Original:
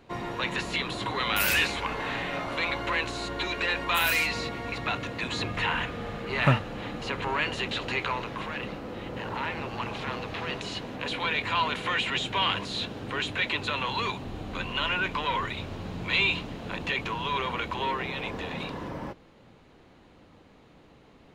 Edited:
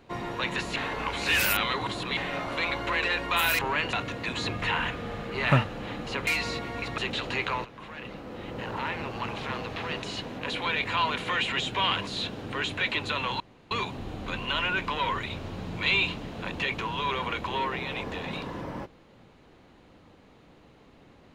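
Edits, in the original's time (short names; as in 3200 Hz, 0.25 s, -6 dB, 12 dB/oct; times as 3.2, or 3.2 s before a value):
0.76–2.17 reverse
3.02–3.6 cut
4.17–4.88 swap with 7.22–7.56
8.23–9.18 fade in, from -13.5 dB
13.98 insert room tone 0.31 s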